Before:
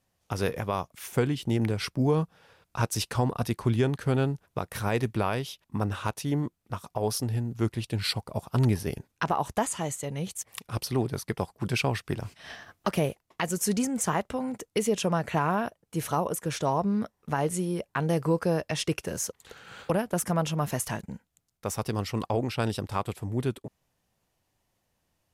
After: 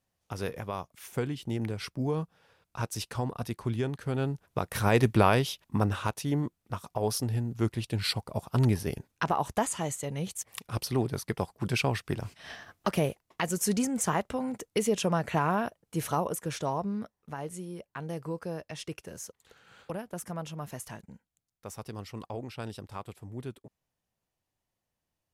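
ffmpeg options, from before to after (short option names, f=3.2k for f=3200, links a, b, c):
-af "volume=6dB,afade=t=in:st=4.13:d=1.14:silence=0.251189,afade=t=out:st=5.27:d=0.85:silence=0.446684,afade=t=out:st=16.04:d=1.29:silence=0.334965"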